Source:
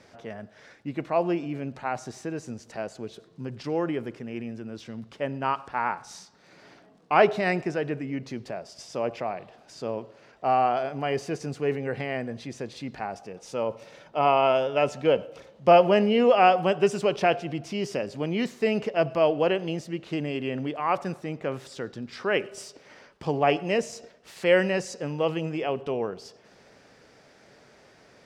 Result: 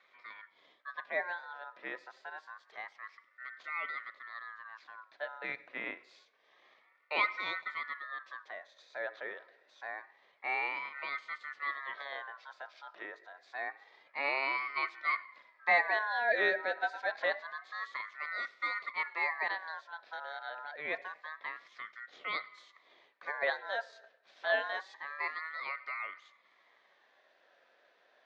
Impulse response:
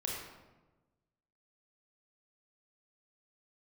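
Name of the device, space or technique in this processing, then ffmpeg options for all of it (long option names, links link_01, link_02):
voice changer toy: -af "aeval=exprs='val(0)*sin(2*PI*1400*n/s+1400*0.2/0.27*sin(2*PI*0.27*n/s))':channel_layout=same,highpass=520,equalizer=frequency=570:width_type=q:width=4:gain=3,equalizer=frequency=880:width_type=q:width=4:gain=-8,equalizer=frequency=1400:width_type=q:width=4:gain=-5,equalizer=frequency=2900:width_type=q:width=4:gain=-9,lowpass=frequency=4000:width=0.5412,lowpass=frequency=4000:width=1.3066,volume=-5.5dB"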